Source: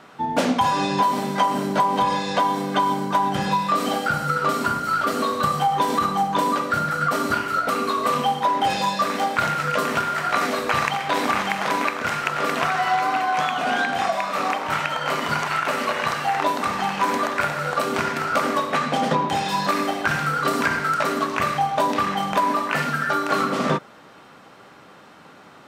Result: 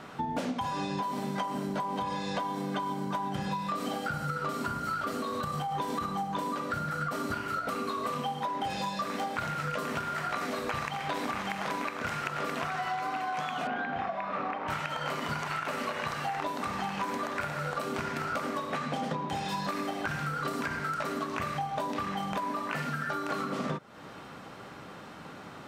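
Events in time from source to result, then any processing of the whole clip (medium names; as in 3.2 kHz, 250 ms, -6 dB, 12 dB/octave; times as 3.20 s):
5.16–5.75 s: compression, threshold -21 dBFS
13.67–14.68 s: low-pass 2.2 kHz
whole clip: bass shelf 170 Hz +9 dB; compression, threshold -31 dBFS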